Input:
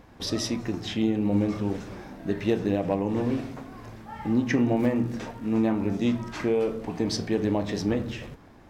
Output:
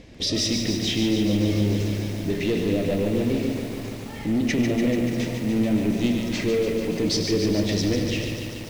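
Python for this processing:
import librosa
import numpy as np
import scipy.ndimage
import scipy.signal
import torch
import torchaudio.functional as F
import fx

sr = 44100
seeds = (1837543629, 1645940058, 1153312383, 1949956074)

y = fx.high_shelf(x, sr, hz=2400.0, db=7.5)
y = fx.echo_feedback(y, sr, ms=97, feedback_pct=49, wet_db=-13.0)
y = 10.0 ** (-25.0 / 20.0) * np.tanh(y / 10.0 ** (-25.0 / 20.0))
y = scipy.signal.sosfilt(scipy.signal.butter(2, 6700.0, 'lowpass', fs=sr, output='sos'), y)
y = fx.band_shelf(y, sr, hz=1100.0, db=-13.5, octaves=1.3)
y = fx.echo_crushed(y, sr, ms=145, feedback_pct=80, bits=8, wet_db=-6)
y = y * 10.0 ** (6.0 / 20.0)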